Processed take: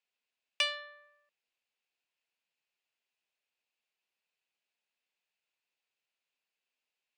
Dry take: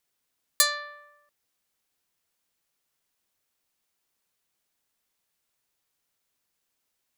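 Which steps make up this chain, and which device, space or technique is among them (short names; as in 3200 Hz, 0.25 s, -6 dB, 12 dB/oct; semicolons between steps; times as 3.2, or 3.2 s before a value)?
full-range speaker at full volume (Doppler distortion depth 0.45 ms; speaker cabinet 290–6600 Hz, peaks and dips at 320 Hz -6 dB, 1200 Hz -5 dB, 2600 Hz +10 dB, 5900 Hz -7 dB); 0.67–1.07 low shelf 180 Hz +10 dB; gain -8 dB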